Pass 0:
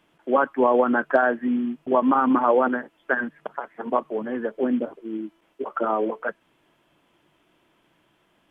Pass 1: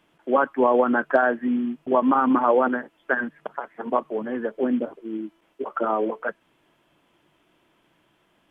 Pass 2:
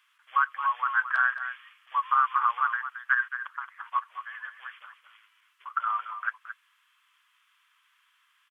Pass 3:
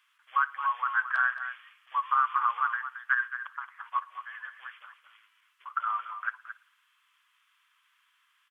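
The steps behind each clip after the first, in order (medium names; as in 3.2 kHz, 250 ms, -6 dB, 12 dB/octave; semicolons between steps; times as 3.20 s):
no audible change
Chebyshev high-pass 1.1 kHz, order 5; delay 222 ms -10.5 dB; trim +1.5 dB
reverberation, pre-delay 55 ms, DRR 19.5 dB; trim -2 dB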